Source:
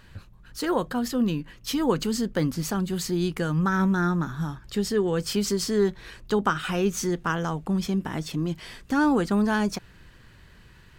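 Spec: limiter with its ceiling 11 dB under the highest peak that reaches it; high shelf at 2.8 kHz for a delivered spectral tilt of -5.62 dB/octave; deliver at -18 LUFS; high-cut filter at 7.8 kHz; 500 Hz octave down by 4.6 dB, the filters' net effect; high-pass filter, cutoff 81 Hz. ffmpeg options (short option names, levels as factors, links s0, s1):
-af "highpass=81,lowpass=7800,equalizer=f=500:t=o:g=-6,highshelf=f=2800:g=-6,volume=5.01,alimiter=limit=0.355:level=0:latency=1"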